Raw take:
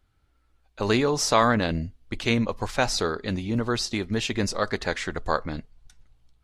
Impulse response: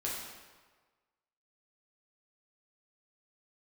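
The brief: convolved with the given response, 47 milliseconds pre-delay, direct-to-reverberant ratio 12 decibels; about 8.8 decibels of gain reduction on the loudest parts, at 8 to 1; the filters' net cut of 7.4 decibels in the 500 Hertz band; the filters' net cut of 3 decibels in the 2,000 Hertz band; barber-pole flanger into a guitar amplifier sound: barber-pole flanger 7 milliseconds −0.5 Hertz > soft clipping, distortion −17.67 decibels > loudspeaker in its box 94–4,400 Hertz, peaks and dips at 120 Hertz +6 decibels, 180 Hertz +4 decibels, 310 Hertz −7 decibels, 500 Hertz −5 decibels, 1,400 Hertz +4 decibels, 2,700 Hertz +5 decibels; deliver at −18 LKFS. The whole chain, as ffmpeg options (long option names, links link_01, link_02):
-filter_complex "[0:a]equalizer=frequency=500:width_type=o:gain=-5.5,equalizer=frequency=2000:width_type=o:gain=-7.5,acompressor=threshold=-28dB:ratio=8,asplit=2[link_01][link_02];[1:a]atrim=start_sample=2205,adelay=47[link_03];[link_02][link_03]afir=irnorm=-1:irlink=0,volume=-16dB[link_04];[link_01][link_04]amix=inputs=2:normalize=0,asplit=2[link_05][link_06];[link_06]adelay=7,afreqshift=-0.5[link_07];[link_05][link_07]amix=inputs=2:normalize=1,asoftclip=threshold=-26.5dB,highpass=94,equalizer=frequency=120:width_type=q:width=4:gain=6,equalizer=frequency=180:width_type=q:width=4:gain=4,equalizer=frequency=310:width_type=q:width=4:gain=-7,equalizer=frequency=500:width_type=q:width=4:gain=-5,equalizer=frequency=1400:width_type=q:width=4:gain=4,equalizer=frequency=2700:width_type=q:width=4:gain=5,lowpass=frequency=4400:width=0.5412,lowpass=frequency=4400:width=1.3066,volume=20.5dB"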